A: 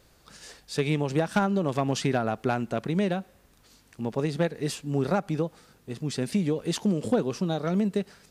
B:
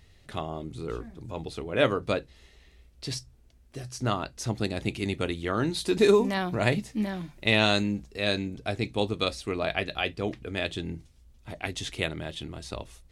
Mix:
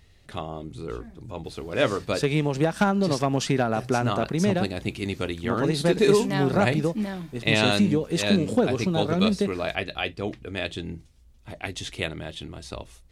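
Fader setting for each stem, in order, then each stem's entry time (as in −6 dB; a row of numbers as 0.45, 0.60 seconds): +2.5, +0.5 decibels; 1.45, 0.00 seconds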